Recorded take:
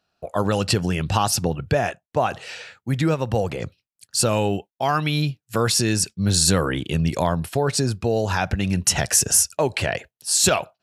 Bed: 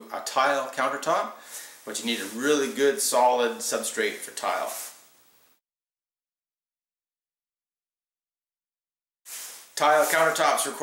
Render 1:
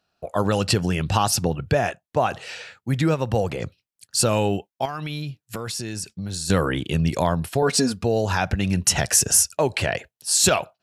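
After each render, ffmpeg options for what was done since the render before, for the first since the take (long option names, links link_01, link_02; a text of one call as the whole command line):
ffmpeg -i in.wav -filter_complex "[0:a]asettb=1/sr,asplit=3[link_01][link_02][link_03];[link_01]atrim=end=4.854[link_04];[link_02]atrim=start=4.85:end=6.5,asetpts=PTS-STARTPTS,afade=type=in:duration=0.004:curve=qsin,afade=type=out:start_time=1.646:duration=0.004:curve=qsin,acompressor=threshold=-27dB:ratio=5:attack=3.2:release=140:knee=1:detection=peak[link_05];[link_03]atrim=start=6.496[link_06];[link_04][link_05]acrossfade=duration=0.004:curve1=hsin:curve2=qsin[link_07];[link_07][link_06]acrossfade=duration=0.004:curve1=qsin:curve2=hsin,asettb=1/sr,asplit=3[link_08][link_09][link_10];[link_08]atrim=end=7.624[link_11];[link_09]atrim=start=7.62:end=8.04,asetpts=PTS-STARTPTS,afade=type=in:duration=0.004:curve=qsin,afade=type=out:start_time=0.416:duration=0.004:curve=qsin,aecho=1:1:4.2:0.9,atrim=end_sample=18522[link_12];[link_10]atrim=start=8.036[link_13];[link_11][link_12]acrossfade=duration=0.004:curve1=hsin:curve2=qsin[link_14];[link_14][link_13]acrossfade=duration=0.004:curve1=qsin:curve2=hsin" out.wav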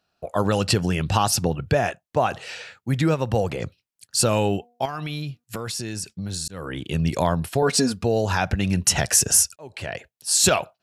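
ffmpeg -i in.wav -filter_complex "[0:a]asettb=1/sr,asplit=3[link_01][link_02][link_03];[link_01]atrim=end=4.554[link_04];[link_02]atrim=start=4.55:end=5.44,asetpts=PTS-STARTPTS,afade=type=in:duration=0.004:curve=qsin,afade=type=out:start_time=0.886:duration=0.004:curve=qsin,bandreject=frequency=240.3:width_type=h:width=4,bandreject=frequency=480.6:width_type=h:width=4,bandreject=frequency=720.9:width_type=h:width=4,bandreject=frequency=961.2:width_type=h:width=4,bandreject=frequency=1201.5:width_type=h:width=4,bandreject=frequency=1441.8:width_type=h:width=4[link_05];[link_03]atrim=start=5.436[link_06];[link_04][link_05]acrossfade=duration=0.004:curve1=hsin:curve2=qsin[link_07];[link_07][link_06]acrossfade=duration=0.004:curve1=qsin:curve2=hsin,asplit=3[link_08][link_09][link_10];[link_08]atrim=end=6.48,asetpts=PTS-STARTPTS,afade=type=out:start_time=6.476:duration=0.004:curve=hsin[link_11];[link_09]atrim=start=6.48:end=9.56,asetpts=PTS-STARTPTS,afade=type=in:duration=0.82:curve=qsin,afade=type=out:start_time=3.076:duration=0.004:curve=hsin[link_12];[link_10]atrim=start=9.56,asetpts=PTS-STARTPTS,afade=type=in:duration=0.75[link_13];[link_11][link_12][link_13]concat=n=3:v=0:a=1" out.wav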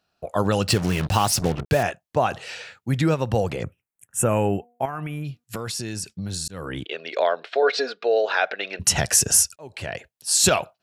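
ffmpeg -i in.wav -filter_complex "[0:a]asettb=1/sr,asplit=3[link_01][link_02][link_03];[link_01]atrim=end=0.684[link_04];[link_02]atrim=start=0.68:end=1.83,asetpts=PTS-STARTPTS,afade=type=in:duration=0.004:curve=qsin,afade=type=out:start_time=1.146:duration=0.004:curve=qsin,acrusher=bits=4:mix=0:aa=0.5[link_05];[link_03]atrim=start=1.826[link_06];[link_04][link_05]acrossfade=duration=0.004:curve1=hsin:curve2=qsin[link_07];[link_07][link_06]acrossfade=duration=0.004:curve1=qsin:curve2=hsin,asplit=3[link_08][link_09][link_10];[link_08]afade=type=out:start_time=3.62:duration=0.02[link_11];[link_09]asuperstop=centerf=4400:order=4:qfactor=0.81,afade=type=in:start_time=3.62:duration=0.02,afade=type=out:start_time=5.24:duration=0.02[link_12];[link_10]afade=type=in:start_time=5.24:duration=0.02[link_13];[link_11][link_12][link_13]amix=inputs=3:normalize=0,asplit=3[link_14][link_15][link_16];[link_14]afade=type=out:start_time=6.84:duration=0.02[link_17];[link_15]highpass=frequency=430:width=0.5412,highpass=frequency=430:width=1.3066,equalizer=frequency=440:width_type=q:width=4:gain=5,equalizer=frequency=640:width_type=q:width=4:gain=5,equalizer=frequency=940:width_type=q:width=4:gain=-6,equalizer=frequency=1500:width_type=q:width=4:gain=5,equalizer=frequency=2100:width_type=q:width=4:gain=4,equalizer=frequency=3800:width_type=q:width=4:gain=5,lowpass=frequency=4200:width=0.5412,lowpass=frequency=4200:width=1.3066,afade=type=in:start_time=6.84:duration=0.02,afade=type=out:start_time=8.79:duration=0.02[link_18];[link_16]afade=type=in:start_time=8.79:duration=0.02[link_19];[link_17][link_18][link_19]amix=inputs=3:normalize=0" out.wav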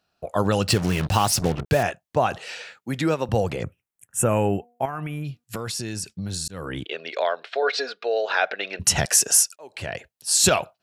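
ffmpeg -i in.wav -filter_complex "[0:a]asettb=1/sr,asplit=3[link_01][link_02][link_03];[link_01]atrim=end=2.374[link_04];[link_02]atrim=start=2.37:end=3.29,asetpts=PTS-STARTPTS,afade=type=in:duration=0.004:curve=qsin,afade=type=out:start_time=0.916:duration=0.004:curve=qsin,highpass=210[link_05];[link_03]atrim=start=3.286[link_06];[link_04][link_05]acrossfade=duration=0.004:curve1=hsin:curve2=qsin[link_07];[link_07][link_06]acrossfade=duration=0.004:curve1=qsin:curve2=hsin,asettb=1/sr,asplit=3[link_08][link_09][link_10];[link_08]atrim=end=7.114[link_11];[link_09]atrim=start=7.11:end=8.3,asetpts=PTS-STARTPTS,afade=type=in:duration=0.004:curve=qsin,afade=type=out:start_time=1.186:duration=0.004:curve=qsin,lowshelf=frequency=440:gain=-8.5[link_12];[link_10]atrim=start=8.296[link_13];[link_11][link_12]acrossfade=duration=0.004:curve1=hsin:curve2=qsin[link_14];[link_14][link_13]acrossfade=duration=0.004:curve1=qsin:curve2=hsin,asettb=1/sr,asplit=3[link_15][link_16][link_17];[link_15]atrim=end=9.054[link_18];[link_16]atrim=start=9.05:end=9.75,asetpts=PTS-STARTPTS,afade=type=in:duration=0.004:curve=qsin,afade=type=out:start_time=0.696:duration=0.004:curve=qsin,highpass=380[link_19];[link_17]atrim=start=9.746[link_20];[link_18][link_19]acrossfade=duration=0.004:curve1=hsin:curve2=qsin[link_21];[link_21][link_20]acrossfade=duration=0.004:curve1=qsin:curve2=hsin" out.wav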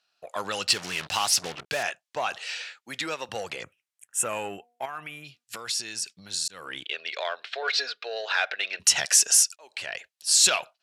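ffmpeg -i in.wav -filter_complex "[0:a]asplit=2[link_01][link_02];[link_02]asoftclip=type=tanh:threshold=-21dB,volume=-6dB[link_03];[link_01][link_03]amix=inputs=2:normalize=0,bandpass=frequency=4100:width_type=q:width=0.57:csg=0" out.wav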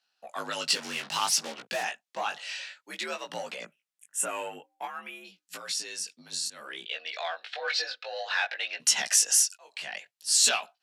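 ffmpeg -i in.wav -af "afreqshift=60,flanger=delay=17:depth=3.8:speed=0.57" out.wav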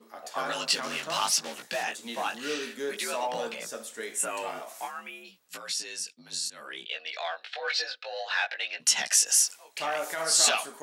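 ffmpeg -i in.wav -i bed.wav -filter_complex "[1:a]volume=-11.5dB[link_01];[0:a][link_01]amix=inputs=2:normalize=0" out.wav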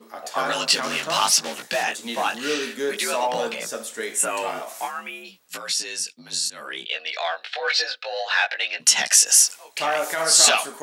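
ffmpeg -i in.wav -af "volume=7.5dB,alimiter=limit=-3dB:level=0:latency=1" out.wav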